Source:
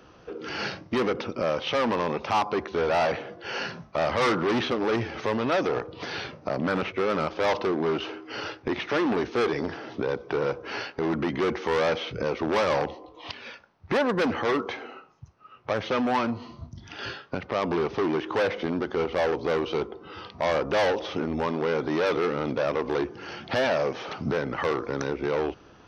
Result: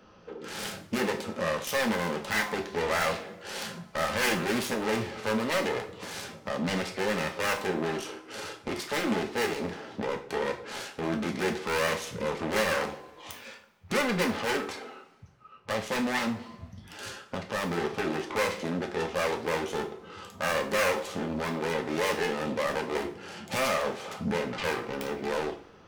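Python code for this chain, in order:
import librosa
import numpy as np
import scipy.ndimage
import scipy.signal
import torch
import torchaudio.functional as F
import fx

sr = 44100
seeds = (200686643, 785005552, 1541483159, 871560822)

y = fx.self_delay(x, sr, depth_ms=0.32)
y = fx.rev_double_slope(y, sr, seeds[0], early_s=0.37, late_s=1.8, knee_db=-22, drr_db=2.0)
y = y * 10.0 ** (-5.0 / 20.0)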